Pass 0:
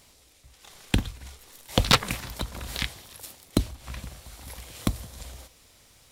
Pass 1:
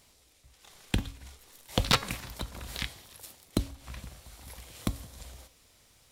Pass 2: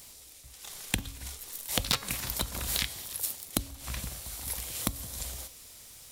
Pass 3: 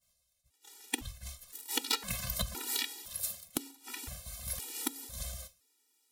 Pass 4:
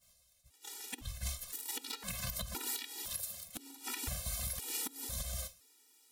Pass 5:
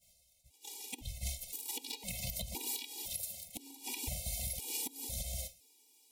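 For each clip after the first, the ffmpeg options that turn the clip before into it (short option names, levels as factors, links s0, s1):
-af "bandreject=f=275.3:t=h:w=4,bandreject=f=550.6:t=h:w=4,bandreject=f=825.9:t=h:w=4,bandreject=f=1101.2:t=h:w=4,bandreject=f=1376.5:t=h:w=4,bandreject=f=1651.8:t=h:w=4,bandreject=f=1927.1:t=h:w=4,bandreject=f=2202.4:t=h:w=4,bandreject=f=2477.7:t=h:w=4,bandreject=f=2753:t=h:w=4,bandreject=f=3028.3:t=h:w=4,bandreject=f=3303.6:t=h:w=4,bandreject=f=3578.9:t=h:w=4,bandreject=f=3854.2:t=h:w=4,bandreject=f=4129.5:t=h:w=4,bandreject=f=4404.8:t=h:w=4,bandreject=f=4680.1:t=h:w=4,bandreject=f=4955.4:t=h:w=4,bandreject=f=5230.7:t=h:w=4,bandreject=f=5506:t=h:w=4,bandreject=f=5781.3:t=h:w=4,bandreject=f=6056.6:t=h:w=4,bandreject=f=6331.9:t=h:w=4,bandreject=f=6607.2:t=h:w=4,bandreject=f=6882.5:t=h:w=4,bandreject=f=7157.8:t=h:w=4,bandreject=f=7433.1:t=h:w=4,bandreject=f=7708.4:t=h:w=4,bandreject=f=7983.7:t=h:w=4,volume=0.562"
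-af "acompressor=threshold=0.0178:ratio=4,crystalizer=i=2:c=0,volume=1.78"
-af "agate=range=0.0224:threshold=0.0141:ratio=3:detection=peak,afftfilt=real='re*gt(sin(2*PI*0.98*pts/sr)*(1-2*mod(floor(b*sr/1024/250),2)),0)':imag='im*gt(sin(2*PI*0.98*pts/sr)*(1-2*mod(floor(b*sr/1024/250),2)),0)':win_size=1024:overlap=0.75"
-af "acompressor=threshold=0.01:ratio=5,alimiter=level_in=3.16:limit=0.0631:level=0:latency=1:release=169,volume=0.316,volume=2.37"
-af "asuperstop=centerf=1400:order=20:qfactor=1.3"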